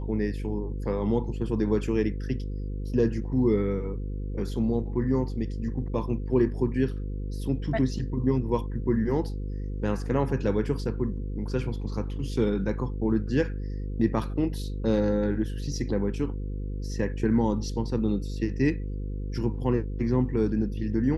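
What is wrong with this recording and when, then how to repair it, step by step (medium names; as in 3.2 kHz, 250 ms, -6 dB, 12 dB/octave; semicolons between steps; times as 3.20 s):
buzz 50 Hz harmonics 10 -32 dBFS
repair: de-hum 50 Hz, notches 10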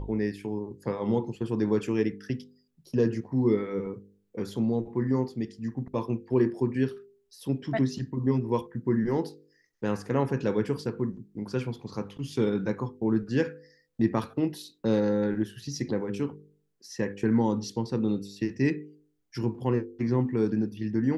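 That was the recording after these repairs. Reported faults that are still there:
nothing left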